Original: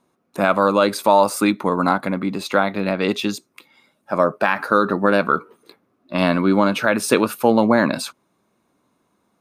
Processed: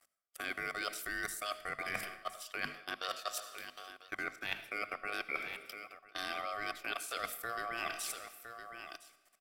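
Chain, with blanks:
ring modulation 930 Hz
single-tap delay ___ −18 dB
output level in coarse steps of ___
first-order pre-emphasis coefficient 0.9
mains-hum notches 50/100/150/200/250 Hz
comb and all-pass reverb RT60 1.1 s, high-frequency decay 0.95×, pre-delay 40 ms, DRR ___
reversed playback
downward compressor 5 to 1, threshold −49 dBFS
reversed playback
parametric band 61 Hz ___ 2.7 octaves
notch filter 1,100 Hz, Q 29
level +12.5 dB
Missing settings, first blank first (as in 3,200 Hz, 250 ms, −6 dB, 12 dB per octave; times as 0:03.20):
1,012 ms, 23 dB, 15.5 dB, −5 dB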